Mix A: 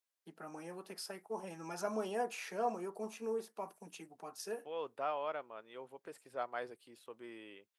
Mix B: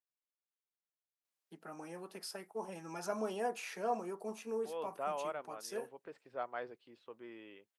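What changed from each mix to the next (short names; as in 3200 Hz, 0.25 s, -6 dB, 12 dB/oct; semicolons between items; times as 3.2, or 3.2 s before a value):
first voice: entry +1.25 s; second voice: add air absorption 180 m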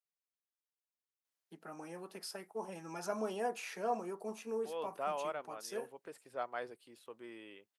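second voice: remove air absorption 180 m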